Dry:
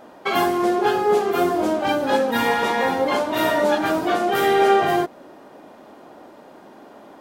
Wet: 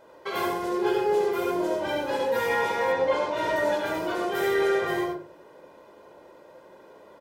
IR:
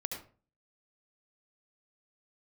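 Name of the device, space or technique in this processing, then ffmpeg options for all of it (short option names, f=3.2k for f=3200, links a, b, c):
microphone above a desk: -filter_complex "[0:a]aecho=1:1:2:0.67[a];[1:a]atrim=start_sample=2205[b];[a][b]afir=irnorm=-1:irlink=0,asettb=1/sr,asplit=3[c][d][e];[c]atrim=end=2.924[f];[d]atrim=start=2.92:end=3.56,asetpts=PTS-STARTPTS,afade=t=in:d=0.004:c=qsin,afade=t=out:st=0.636:d=0.004:c=qsin,lowpass=6.7k[g];[e]atrim=start=3.556[h];[f][g]acrossfade=d=0.004:c1=hsin:c2=qsin[i];[i][h]acrossfade=d=0.004:c1=qsin:c2=hsin,volume=-8.5dB"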